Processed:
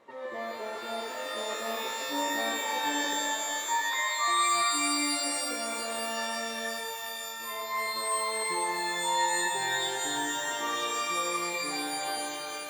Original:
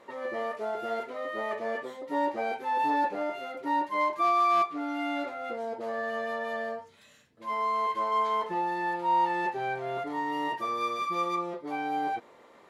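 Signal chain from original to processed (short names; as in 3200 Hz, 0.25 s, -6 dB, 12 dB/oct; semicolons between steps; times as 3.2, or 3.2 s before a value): 3.14–4.28 sine-wave speech; shimmer reverb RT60 3 s, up +12 st, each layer -2 dB, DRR 0.5 dB; gain -5.5 dB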